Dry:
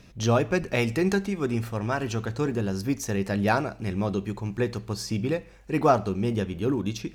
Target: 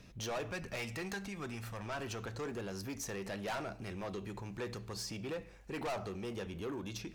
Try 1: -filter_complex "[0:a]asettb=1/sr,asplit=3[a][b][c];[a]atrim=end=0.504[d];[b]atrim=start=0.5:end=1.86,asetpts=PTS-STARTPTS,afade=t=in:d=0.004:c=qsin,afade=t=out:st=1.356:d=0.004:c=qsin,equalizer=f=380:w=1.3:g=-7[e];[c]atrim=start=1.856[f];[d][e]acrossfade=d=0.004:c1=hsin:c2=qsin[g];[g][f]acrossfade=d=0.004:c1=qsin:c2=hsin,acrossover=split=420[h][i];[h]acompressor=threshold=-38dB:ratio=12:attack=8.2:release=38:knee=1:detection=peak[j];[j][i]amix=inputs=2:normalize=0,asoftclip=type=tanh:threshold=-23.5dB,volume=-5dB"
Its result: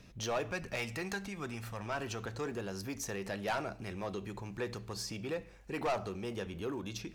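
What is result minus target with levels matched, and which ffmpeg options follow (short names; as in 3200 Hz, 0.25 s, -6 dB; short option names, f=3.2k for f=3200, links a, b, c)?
soft clip: distortion -4 dB
-filter_complex "[0:a]asettb=1/sr,asplit=3[a][b][c];[a]atrim=end=0.504[d];[b]atrim=start=0.5:end=1.86,asetpts=PTS-STARTPTS,afade=t=in:d=0.004:c=qsin,afade=t=out:st=1.356:d=0.004:c=qsin,equalizer=f=380:w=1.3:g=-7[e];[c]atrim=start=1.856[f];[d][e]acrossfade=d=0.004:c1=hsin:c2=qsin[g];[g][f]acrossfade=d=0.004:c1=qsin:c2=hsin,acrossover=split=420[h][i];[h]acompressor=threshold=-38dB:ratio=12:attack=8.2:release=38:knee=1:detection=peak[j];[j][i]amix=inputs=2:normalize=0,asoftclip=type=tanh:threshold=-30dB,volume=-5dB"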